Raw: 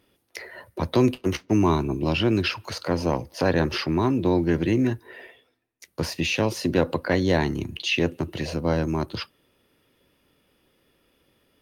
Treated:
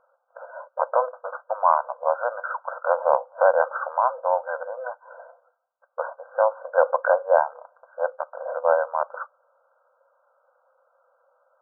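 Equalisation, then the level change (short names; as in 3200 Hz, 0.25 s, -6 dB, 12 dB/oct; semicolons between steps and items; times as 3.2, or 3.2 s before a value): brick-wall FIR band-pass 490–1600 Hz; +8.5 dB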